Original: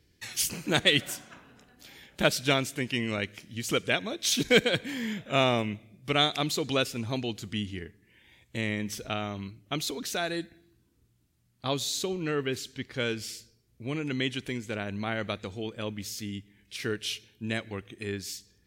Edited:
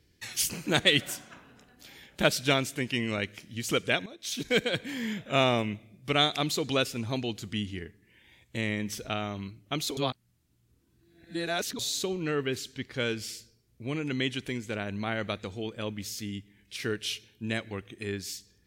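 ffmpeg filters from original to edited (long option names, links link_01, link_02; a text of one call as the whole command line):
ffmpeg -i in.wav -filter_complex "[0:a]asplit=4[link_01][link_02][link_03][link_04];[link_01]atrim=end=4.06,asetpts=PTS-STARTPTS,afade=type=out:start_time=4.056:duration=0.004:curve=hsin:silence=0.188365[link_05];[link_02]atrim=start=4.06:end=9.972,asetpts=PTS-STARTPTS,afade=type=in:duration=1.01:silence=0.188365[link_06];[link_03]atrim=start=9.968:end=11.792,asetpts=PTS-STARTPTS,areverse[link_07];[link_04]atrim=start=11.788[link_08];[link_05][link_06]concat=n=2:v=0:a=1[link_09];[link_09][link_07]acrossfade=duration=0.004:curve1=hsin:curve2=hsin[link_10];[link_10][link_08]acrossfade=duration=0.004:curve1=hsin:curve2=hsin" out.wav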